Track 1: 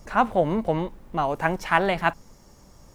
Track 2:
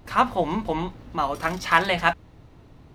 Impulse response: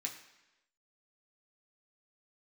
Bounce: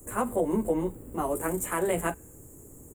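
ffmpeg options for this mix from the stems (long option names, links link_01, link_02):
-filter_complex "[0:a]highpass=frequency=1100:poles=1,volume=0dB[link_01];[1:a]volume=-1,adelay=7.9,volume=-2.5dB,asplit=2[link_02][link_03];[link_03]volume=-21.5dB[link_04];[2:a]atrim=start_sample=2205[link_05];[link_04][link_05]afir=irnorm=-1:irlink=0[link_06];[link_01][link_02][link_06]amix=inputs=3:normalize=0,firequalizer=gain_entry='entry(170,0);entry(420,8);entry(700,-7);entry(3200,-17);entry(5100,-30);entry(7400,14)':delay=0.05:min_phase=1,alimiter=limit=-16.5dB:level=0:latency=1:release=175"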